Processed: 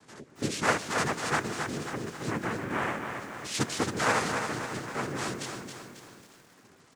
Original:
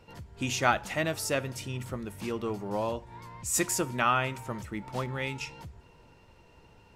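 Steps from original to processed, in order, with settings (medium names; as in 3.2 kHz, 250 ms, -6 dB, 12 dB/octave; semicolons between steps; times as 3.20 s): dynamic bell 5 kHz, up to -6 dB, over -45 dBFS, Q 0.79; noise-vocoded speech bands 3; delay 903 ms -23.5 dB; on a send at -22 dB: reverberation RT60 0.50 s, pre-delay 139 ms; on the sum: bit-crushed delay 271 ms, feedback 55%, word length 9-bit, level -6 dB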